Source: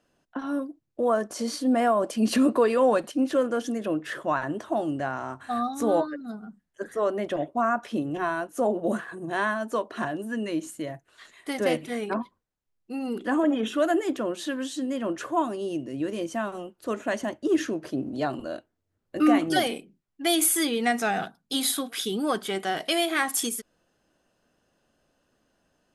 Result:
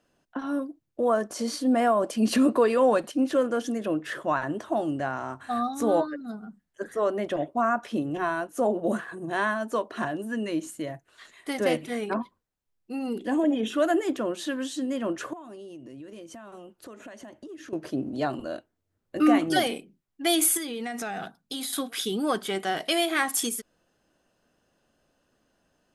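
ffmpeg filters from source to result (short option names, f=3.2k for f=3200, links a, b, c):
-filter_complex "[0:a]asettb=1/sr,asplit=3[a][b][c];[a]atrim=end=13.134[d];[b]atrim=start=13.13:end=13.7,asetpts=PTS-STARTPTS,afade=t=in:d=0.004:c=qsin,afade=t=out:st=0.566:d=0.004:c=qsin,equalizer=f=1.3k:w=2.1:g=-13[e];[c]atrim=start=13.696[f];[d][e]acrossfade=d=0.004:c1=hsin:c2=qsin[g];[g][f]acrossfade=d=0.004:c1=qsin:c2=hsin,asettb=1/sr,asplit=3[h][i][j];[h]atrim=end=15.334[k];[i]atrim=start=15.33:end=17.73,asetpts=PTS-STARTPTS,afade=t=in:d=0.004:c=qsin,afade=t=out:st=2.396:d=0.004:c=qsin,acompressor=threshold=-40dB:ratio=8:attack=3.2:release=140:knee=1:detection=peak[l];[j]atrim=start=17.726[m];[k][l]acrossfade=d=0.004:c1=hsin:c2=qsin[n];[n][m]acrossfade=d=0.004:c1=qsin:c2=hsin,asettb=1/sr,asplit=3[o][p][q];[o]atrim=end=20.574[r];[p]atrim=start=20.57:end=21.73,asetpts=PTS-STARTPTS,afade=t=in:d=0.004:c=qsin,afade=t=out:st=1.156:d=0.004:c=qsin,acompressor=threshold=-29dB:ratio=12:attack=3.2:release=140:knee=1:detection=peak[s];[q]atrim=start=21.726[t];[r][s]acrossfade=d=0.004:c1=hsin:c2=qsin[u];[u][t]acrossfade=d=0.004:c1=qsin:c2=hsin"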